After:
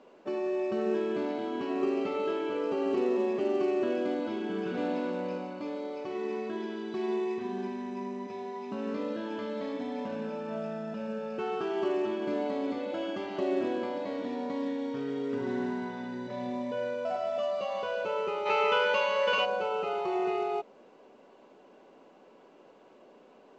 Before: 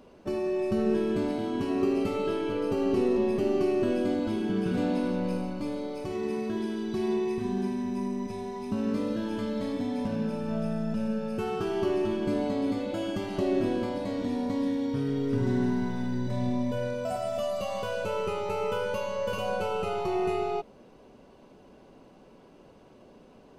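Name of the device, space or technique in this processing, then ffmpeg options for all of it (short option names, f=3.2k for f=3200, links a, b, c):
telephone: -filter_complex "[0:a]asplit=3[a][b][c];[a]afade=t=out:st=18.45:d=0.02[d];[b]equalizer=f=2.8k:w=0.36:g=12.5,afade=t=in:st=18.45:d=0.02,afade=t=out:st=19.44:d=0.02[e];[c]afade=t=in:st=19.44:d=0.02[f];[d][e][f]amix=inputs=3:normalize=0,highpass=340,lowpass=3.4k" -ar 16000 -c:a pcm_mulaw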